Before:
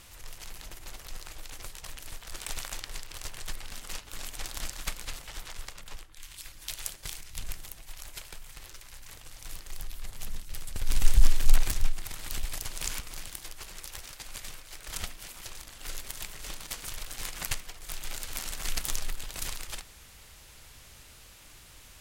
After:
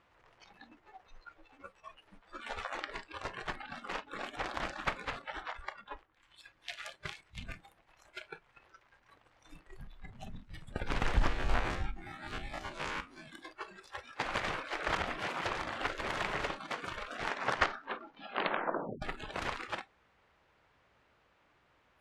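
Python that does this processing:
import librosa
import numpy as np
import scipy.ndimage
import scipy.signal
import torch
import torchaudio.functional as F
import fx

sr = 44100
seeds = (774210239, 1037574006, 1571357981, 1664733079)

y = fx.ensemble(x, sr, at=(0.64, 2.75))
y = fx.spec_steps(y, sr, hold_ms=50, at=(11.27, 13.26), fade=0.02)
y = fx.over_compress(y, sr, threshold_db=-38.0, ratio=-1.0, at=(14.18, 16.45), fade=0.02)
y = fx.edit(y, sr, fx.tape_stop(start_s=16.97, length_s=2.05), tone=tone)
y = scipy.signal.sosfilt(scipy.signal.butter(2, 1500.0, 'lowpass', fs=sr, output='sos'), y)
y = fx.noise_reduce_blind(y, sr, reduce_db=18)
y = fx.highpass(y, sr, hz=370.0, slope=6)
y = y * librosa.db_to_amplitude(11.5)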